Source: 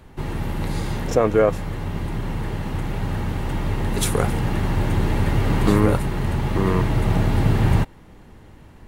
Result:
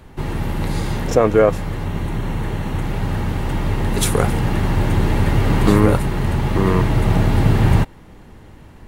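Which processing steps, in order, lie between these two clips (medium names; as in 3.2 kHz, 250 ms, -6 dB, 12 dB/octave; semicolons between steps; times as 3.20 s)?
1.86–2.81 s: band-stop 4.9 kHz, Q 8.3; trim +3.5 dB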